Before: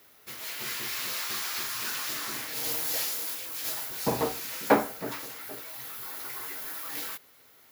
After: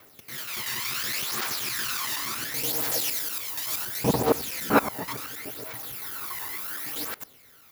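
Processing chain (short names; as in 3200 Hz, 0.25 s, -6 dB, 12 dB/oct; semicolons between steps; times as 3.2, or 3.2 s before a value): local time reversal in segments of 94 ms; phaser 0.7 Hz, delay 1.1 ms, feedback 55%; gain +2 dB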